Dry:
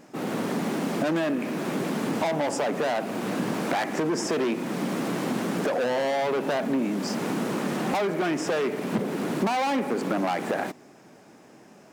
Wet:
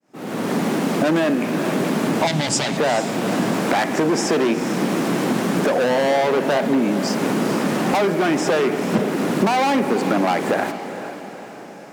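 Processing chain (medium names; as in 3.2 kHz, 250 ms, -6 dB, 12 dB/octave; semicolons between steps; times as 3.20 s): fade-in on the opening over 0.55 s; 2.27–2.77 s: ten-band graphic EQ 125 Hz +11 dB, 250 Hz -3 dB, 500 Hz -10 dB, 1 kHz -5 dB, 4 kHz +10 dB, 8 kHz +9 dB, 16 kHz -9 dB; echo that smears into a reverb 454 ms, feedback 52%, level -11 dB; trim +7 dB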